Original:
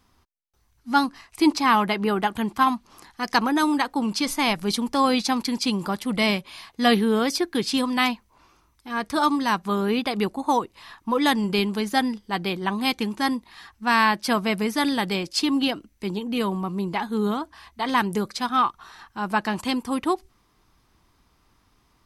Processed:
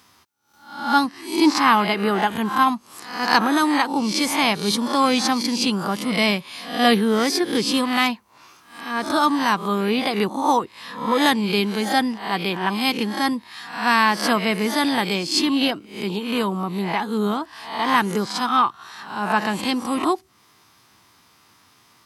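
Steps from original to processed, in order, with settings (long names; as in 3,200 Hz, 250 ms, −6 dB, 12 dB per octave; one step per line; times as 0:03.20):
peak hold with a rise ahead of every peak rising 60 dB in 0.48 s
high-pass filter 94 Hz 24 dB per octave
one half of a high-frequency compander encoder only
level +1.5 dB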